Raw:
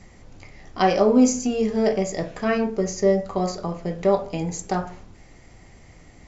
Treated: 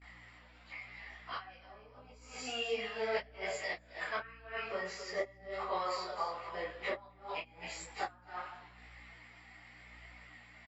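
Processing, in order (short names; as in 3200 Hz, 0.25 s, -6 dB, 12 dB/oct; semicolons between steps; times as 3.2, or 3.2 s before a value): HPF 1400 Hz 12 dB/oct; gate with hold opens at -49 dBFS; running mean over 7 samples; on a send: echo 0.155 s -9 dB; on the sum: flipped gate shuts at -26 dBFS, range -27 dB; plain phase-vocoder stretch 1.7×; hum 60 Hz, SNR 19 dB; detuned doubles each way 31 cents; gain +10.5 dB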